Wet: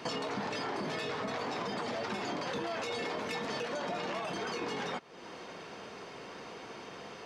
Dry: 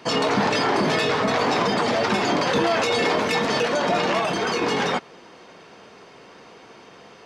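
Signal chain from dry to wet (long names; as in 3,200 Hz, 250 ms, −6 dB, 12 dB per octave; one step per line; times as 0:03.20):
downward compressor 4 to 1, threshold −37 dBFS, peak gain reduction 16.5 dB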